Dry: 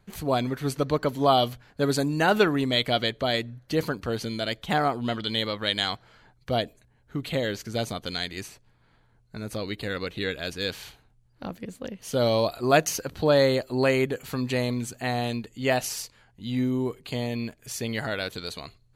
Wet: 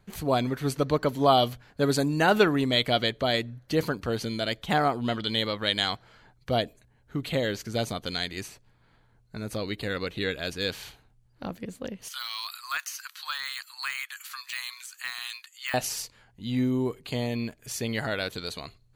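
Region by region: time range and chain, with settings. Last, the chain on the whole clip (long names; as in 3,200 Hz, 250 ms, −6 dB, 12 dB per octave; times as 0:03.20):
0:12.08–0:15.74: Butterworth high-pass 1,100 Hz 48 dB per octave + de-essing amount 95% + high-shelf EQ 4,200 Hz +7.5 dB
whole clip: no processing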